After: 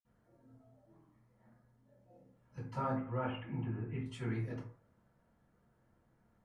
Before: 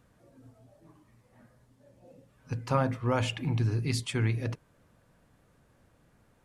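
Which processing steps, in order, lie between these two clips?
2.91–4.01 s: elliptic low-pass 2.9 kHz, stop band 40 dB; reverberation RT60 0.50 s, pre-delay 46 ms, DRR -60 dB; trim +4.5 dB

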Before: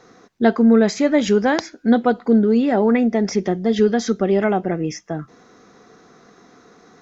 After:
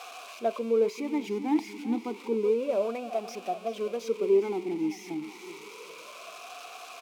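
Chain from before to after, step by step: zero-crossing glitches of -9 dBFS; feedback delay 389 ms, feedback 51%, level -14 dB; talking filter a-u 0.3 Hz; trim -1.5 dB

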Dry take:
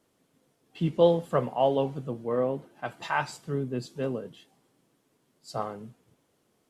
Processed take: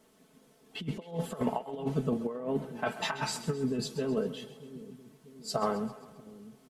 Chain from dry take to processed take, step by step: comb 4.6 ms, depth 64%; compressor with a negative ratio -31 dBFS, ratio -0.5; two-band feedback delay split 390 Hz, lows 637 ms, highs 132 ms, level -14 dB

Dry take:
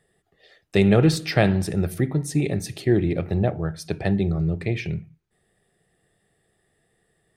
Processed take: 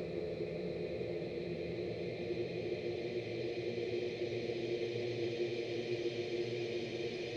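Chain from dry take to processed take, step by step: LFO band-pass square 9.9 Hz 490–4600 Hz; Paulstretch 34×, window 0.50 s, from 4.56 s; trim -1.5 dB

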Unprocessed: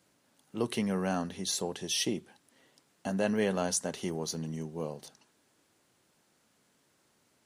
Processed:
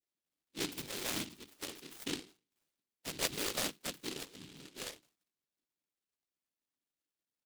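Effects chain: expander on every frequency bin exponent 1.5; Chebyshev band-pass 260–2000 Hz, order 4; tilt EQ +2 dB/octave; hum notches 50/100/150/200/250/300/350/400 Hz; comb 3.4 ms, depth 57%; in parallel at -3 dB: peak limiter -33.5 dBFS, peak gain reduction 11.5 dB; on the sum: whisper effect; on a send at -23.5 dB: reverberation RT60 0.15 s, pre-delay 3 ms; on the sum: delay time shaken by noise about 3.3 kHz, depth 0.38 ms; trim -4 dB

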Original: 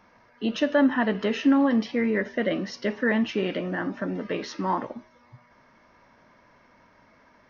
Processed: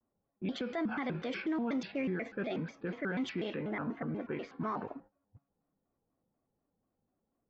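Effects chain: gate -46 dBFS, range -13 dB; level-controlled noise filter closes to 480 Hz, open at -19.5 dBFS; peak limiter -20.5 dBFS, peak gain reduction 9.5 dB; vibrato with a chosen wave square 4.1 Hz, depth 250 cents; trim -7 dB

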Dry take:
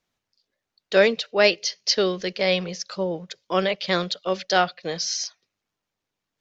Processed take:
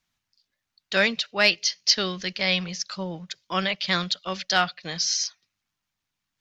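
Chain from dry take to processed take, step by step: peaking EQ 460 Hz -14.5 dB 1.3 oct; in parallel at -10 dB: overload inside the chain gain 11 dB

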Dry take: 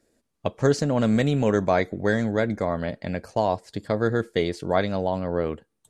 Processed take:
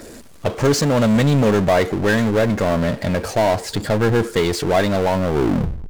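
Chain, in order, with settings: tape stop on the ending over 0.62 s; phaser 0.72 Hz, delay 3.3 ms, feedback 22%; power-law waveshaper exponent 0.5

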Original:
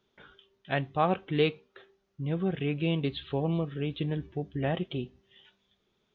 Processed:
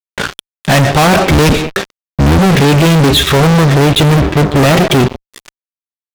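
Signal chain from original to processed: 1.27–2.39 s: octave divider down 1 oct, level 0 dB; band-stop 3 kHz, Q 5.8; on a send at -22 dB: reverberation RT60 0.35 s, pre-delay 70 ms; on the sum: fuzz box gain 51 dB, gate -53 dBFS; trim +6.5 dB

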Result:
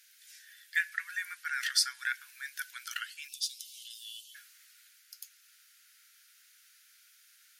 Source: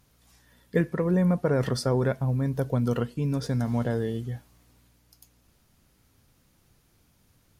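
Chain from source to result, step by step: Chebyshev high-pass 1.5 kHz, order 6, from 3.27 s 2.8 kHz, from 4.34 s 1.4 kHz; trim +8.5 dB

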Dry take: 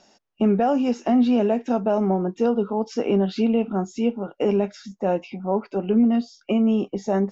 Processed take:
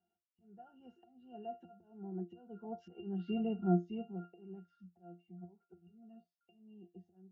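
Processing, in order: Doppler pass-by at 3.18 s, 11 m/s, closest 3.4 m; slow attack 544 ms; pitch-class resonator F, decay 0.19 s; trim +6 dB

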